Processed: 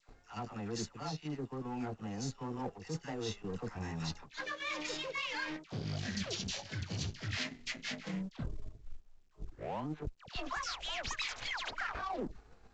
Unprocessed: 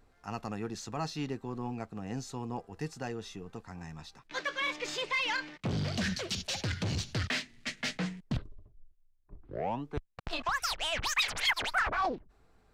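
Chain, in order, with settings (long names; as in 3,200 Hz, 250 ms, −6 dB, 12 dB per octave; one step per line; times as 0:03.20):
pitch shifter swept by a sawtooth +1 semitone, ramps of 521 ms
harmonic and percussive parts rebalanced harmonic +5 dB
reversed playback
downward compressor 20 to 1, threshold −43 dBFS, peak gain reduction 20 dB
reversed playback
all-pass dispersion lows, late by 88 ms, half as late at 1,100 Hz
power curve on the samples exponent 1.4
in parallel at −1 dB: output level in coarse steps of 14 dB
on the sum: soft clipping −32 dBFS, distortion −29 dB
level +9 dB
mu-law 128 kbit/s 16,000 Hz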